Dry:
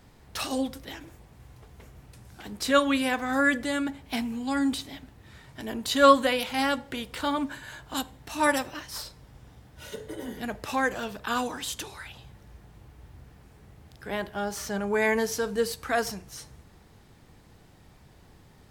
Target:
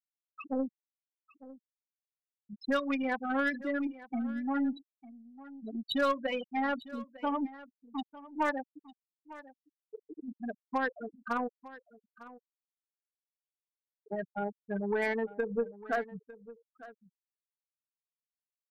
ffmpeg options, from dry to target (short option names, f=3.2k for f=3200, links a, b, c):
-filter_complex "[0:a]acrossover=split=7100[a][b];[b]acompressor=threshold=-56dB:ratio=4:attack=1:release=60[c];[a][c]amix=inputs=2:normalize=0,afftfilt=real='re*gte(hypot(re,im),0.126)':imag='im*gte(hypot(re,im),0.126)':win_size=1024:overlap=0.75,acompressor=threshold=-26dB:ratio=5,aeval=exprs='0.0944*(cos(1*acos(clip(val(0)/0.0944,-1,1)))-cos(1*PI/2))+0.00422*(cos(2*acos(clip(val(0)/0.0944,-1,1)))-cos(2*PI/2))+0.00841*(cos(3*acos(clip(val(0)/0.0944,-1,1)))-cos(3*PI/2))':c=same,aecho=1:1:902:0.126"